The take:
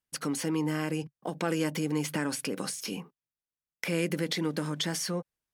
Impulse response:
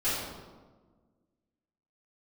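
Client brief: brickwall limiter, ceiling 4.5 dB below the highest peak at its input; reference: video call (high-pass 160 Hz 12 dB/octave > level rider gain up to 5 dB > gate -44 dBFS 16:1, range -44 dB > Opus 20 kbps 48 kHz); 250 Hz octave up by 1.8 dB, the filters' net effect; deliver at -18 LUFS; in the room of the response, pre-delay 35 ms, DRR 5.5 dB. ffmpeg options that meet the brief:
-filter_complex "[0:a]equalizer=f=250:t=o:g=3.5,alimiter=limit=0.1:level=0:latency=1,asplit=2[s0][s1];[1:a]atrim=start_sample=2205,adelay=35[s2];[s1][s2]afir=irnorm=-1:irlink=0,volume=0.168[s3];[s0][s3]amix=inputs=2:normalize=0,highpass=160,dynaudnorm=m=1.78,agate=range=0.00631:threshold=0.00631:ratio=16,volume=4.47" -ar 48000 -c:a libopus -b:a 20k

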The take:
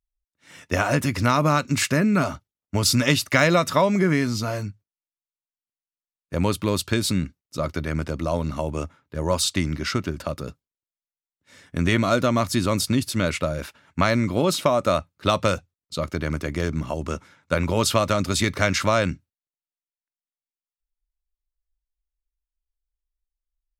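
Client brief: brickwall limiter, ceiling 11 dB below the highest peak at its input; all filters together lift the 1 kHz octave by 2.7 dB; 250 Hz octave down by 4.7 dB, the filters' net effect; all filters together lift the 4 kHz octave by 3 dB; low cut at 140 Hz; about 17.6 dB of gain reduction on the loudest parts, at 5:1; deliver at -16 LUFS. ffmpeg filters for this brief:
-af "highpass=140,equalizer=f=250:t=o:g=-5.5,equalizer=f=1000:t=o:g=3.5,equalizer=f=4000:t=o:g=3.5,acompressor=threshold=0.02:ratio=5,volume=14.1,alimiter=limit=0.75:level=0:latency=1"

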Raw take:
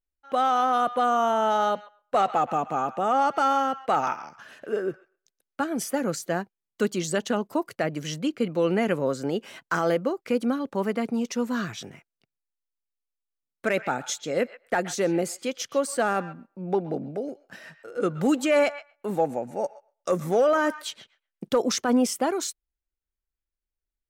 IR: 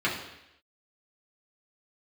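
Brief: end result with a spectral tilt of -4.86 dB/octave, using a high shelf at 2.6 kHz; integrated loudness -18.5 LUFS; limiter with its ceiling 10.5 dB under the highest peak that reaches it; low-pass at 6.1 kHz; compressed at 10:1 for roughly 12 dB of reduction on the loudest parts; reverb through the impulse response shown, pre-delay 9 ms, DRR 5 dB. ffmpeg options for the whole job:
-filter_complex "[0:a]lowpass=6100,highshelf=f=2600:g=-6.5,acompressor=threshold=0.0316:ratio=10,alimiter=level_in=1.41:limit=0.0631:level=0:latency=1,volume=0.708,asplit=2[s0][s1];[1:a]atrim=start_sample=2205,adelay=9[s2];[s1][s2]afir=irnorm=-1:irlink=0,volume=0.133[s3];[s0][s3]amix=inputs=2:normalize=0,volume=8.41"

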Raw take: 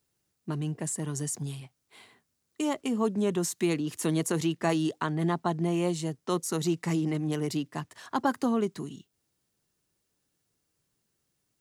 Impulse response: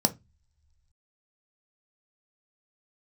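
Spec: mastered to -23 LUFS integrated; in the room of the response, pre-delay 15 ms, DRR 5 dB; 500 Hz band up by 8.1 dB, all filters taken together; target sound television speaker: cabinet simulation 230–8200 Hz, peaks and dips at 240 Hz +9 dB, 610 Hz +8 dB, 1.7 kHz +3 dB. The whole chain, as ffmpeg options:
-filter_complex "[0:a]equalizer=f=500:t=o:g=7,asplit=2[s0][s1];[1:a]atrim=start_sample=2205,adelay=15[s2];[s1][s2]afir=irnorm=-1:irlink=0,volume=0.188[s3];[s0][s3]amix=inputs=2:normalize=0,highpass=f=230:w=0.5412,highpass=f=230:w=1.3066,equalizer=f=240:t=q:w=4:g=9,equalizer=f=610:t=q:w=4:g=8,equalizer=f=1700:t=q:w=4:g=3,lowpass=f=8200:w=0.5412,lowpass=f=8200:w=1.3066,volume=0.891"

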